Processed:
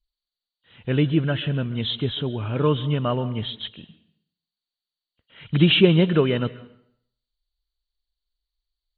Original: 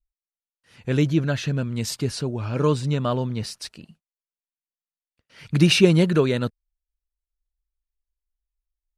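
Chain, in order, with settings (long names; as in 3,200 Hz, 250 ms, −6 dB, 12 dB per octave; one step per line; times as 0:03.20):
hearing-aid frequency compression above 2,800 Hz 4 to 1
dense smooth reverb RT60 0.67 s, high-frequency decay 0.9×, pre-delay 120 ms, DRR 16.5 dB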